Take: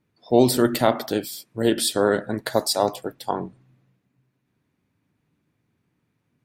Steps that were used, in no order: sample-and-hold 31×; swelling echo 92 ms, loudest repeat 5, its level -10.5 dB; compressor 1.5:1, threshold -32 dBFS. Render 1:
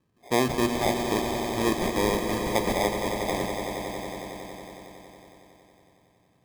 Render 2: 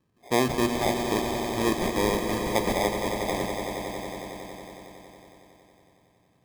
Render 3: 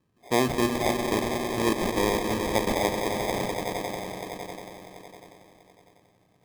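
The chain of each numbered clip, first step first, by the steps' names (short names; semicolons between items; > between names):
sample-and-hold > compressor > swelling echo; compressor > sample-and-hold > swelling echo; compressor > swelling echo > sample-and-hold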